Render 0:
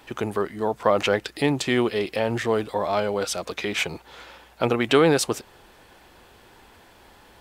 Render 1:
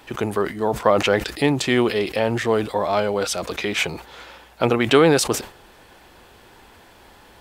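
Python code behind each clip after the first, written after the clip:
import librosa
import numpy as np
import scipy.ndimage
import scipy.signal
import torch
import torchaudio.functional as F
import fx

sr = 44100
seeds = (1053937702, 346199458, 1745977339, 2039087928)

y = fx.sustainer(x, sr, db_per_s=140.0)
y = y * 10.0 ** (3.0 / 20.0)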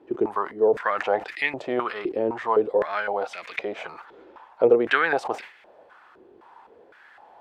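y = fx.filter_held_bandpass(x, sr, hz=3.9, low_hz=360.0, high_hz=2100.0)
y = y * 10.0 ** (6.5 / 20.0)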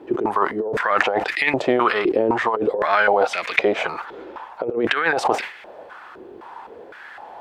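y = fx.over_compress(x, sr, threshold_db=-27.0, ratio=-1.0)
y = y * 10.0 ** (8.0 / 20.0)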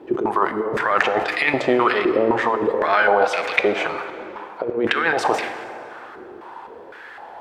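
y = fx.rev_plate(x, sr, seeds[0], rt60_s=2.8, hf_ratio=0.6, predelay_ms=0, drr_db=8.5)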